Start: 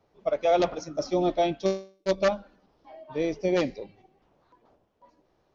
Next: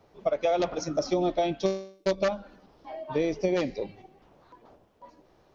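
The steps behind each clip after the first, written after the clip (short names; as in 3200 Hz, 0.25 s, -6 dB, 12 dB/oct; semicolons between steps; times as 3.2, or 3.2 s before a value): compressor 5:1, threshold -31 dBFS, peak gain reduction 12 dB; gain +7.5 dB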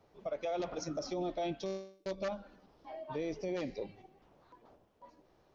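limiter -22 dBFS, peak gain reduction 9.5 dB; gain -6.5 dB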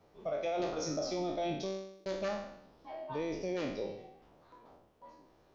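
spectral trails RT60 0.73 s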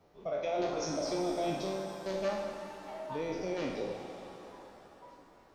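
shimmer reverb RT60 3.2 s, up +7 st, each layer -8 dB, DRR 4.5 dB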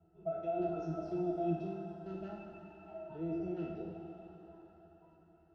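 octave resonator E, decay 0.13 s; gain +6.5 dB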